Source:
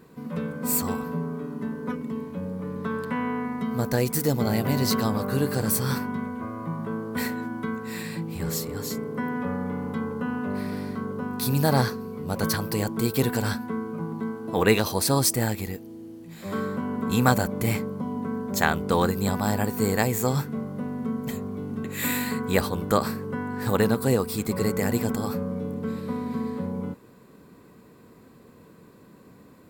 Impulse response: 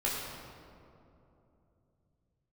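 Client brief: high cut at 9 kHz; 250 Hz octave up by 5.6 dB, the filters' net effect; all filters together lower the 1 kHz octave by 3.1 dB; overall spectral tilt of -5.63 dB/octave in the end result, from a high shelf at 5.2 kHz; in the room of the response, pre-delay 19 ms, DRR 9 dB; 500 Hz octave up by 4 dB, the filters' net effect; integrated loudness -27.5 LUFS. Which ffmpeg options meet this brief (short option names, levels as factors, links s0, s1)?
-filter_complex "[0:a]lowpass=9000,equalizer=f=250:t=o:g=6,equalizer=f=500:t=o:g=4,equalizer=f=1000:t=o:g=-6,highshelf=f=5200:g=6,asplit=2[s0][s1];[1:a]atrim=start_sample=2205,adelay=19[s2];[s1][s2]afir=irnorm=-1:irlink=0,volume=0.158[s3];[s0][s3]amix=inputs=2:normalize=0,volume=0.631"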